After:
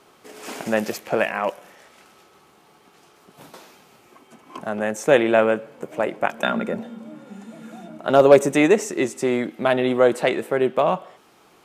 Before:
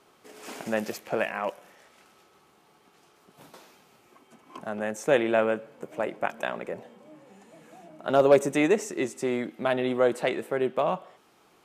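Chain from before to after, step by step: 6.43–7.98 small resonant body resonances 220/1400/3600 Hz, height 16 dB, ringing for 90 ms; gain +6.5 dB

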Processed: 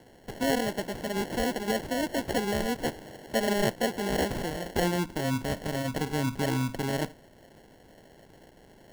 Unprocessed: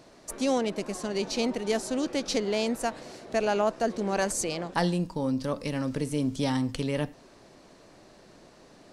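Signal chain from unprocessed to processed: bin magnitudes rounded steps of 30 dB; sample-and-hold 36×

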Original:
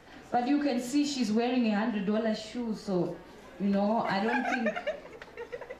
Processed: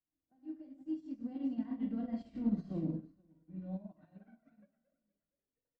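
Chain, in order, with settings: Doppler pass-by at 2.39, 27 m/s, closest 5.6 m; bell 280 Hz +11.5 dB 0.6 oct; notches 60/120/180/240/300/360/420/480/540 Hz; limiter -29 dBFS, peak gain reduction 8.5 dB; RIAA curve playback; notch comb 430 Hz; tapped delay 42/467 ms -15.5/-12.5 dB; shoebox room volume 74 m³, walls mixed, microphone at 0.41 m; upward expander 2.5:1, over -44 dBFS; gain -3 dB

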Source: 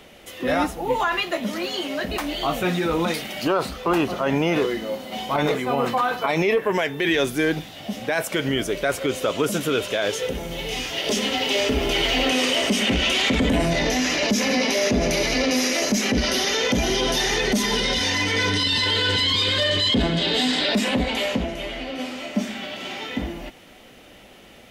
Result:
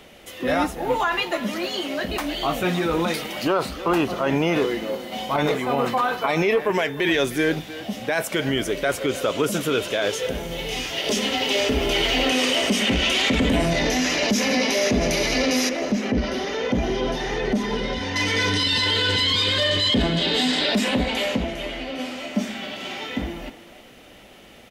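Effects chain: 15.69–18.16 LPF 1100 Hz 6 dB/oct; speakerphone echo 0.31 s, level -13 dB

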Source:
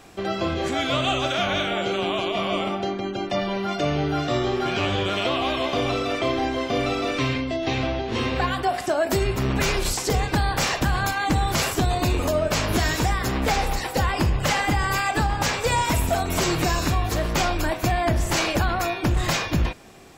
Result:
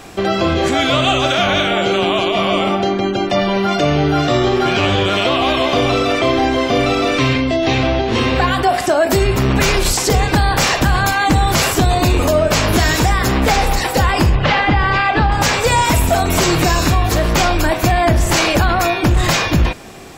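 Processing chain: 14.35–15.32 LPF 4000 Hz 24 dB/oct; in parallel at +2 dB: limiter -21 dBFS, peak gain reduction 11 dB; on the sum: gain +4.5 dB

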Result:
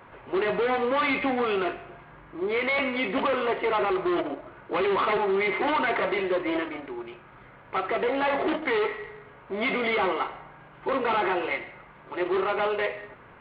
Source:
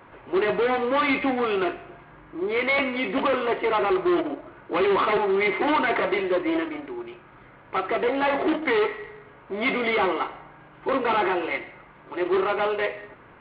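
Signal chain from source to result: bell 310 Hz -5 dB 0.36 oct; limiter -18 dBFS, peak gain reduction 4 dB

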